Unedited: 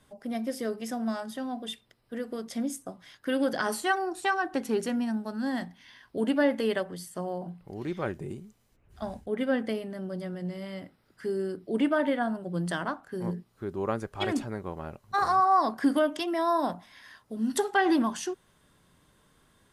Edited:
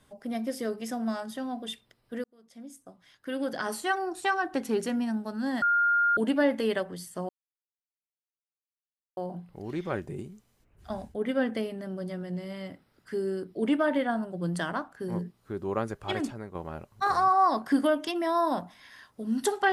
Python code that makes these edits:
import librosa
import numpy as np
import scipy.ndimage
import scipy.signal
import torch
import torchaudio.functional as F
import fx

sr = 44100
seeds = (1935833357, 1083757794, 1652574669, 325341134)

y = fx.edit(x, sr, fx.fade_in_span(start_s=2.24, length_s=2.01),
    fx.bleep(start_s=5.62, length_s=0.55, hz=1410.0, db=-20.5),
    fx.insert_silence(at_s=7.29, length_s=1.88),
    fx.fade_out_to(start_s=14.1, length_s=0.57, floor_db=-6.5), tone=tone)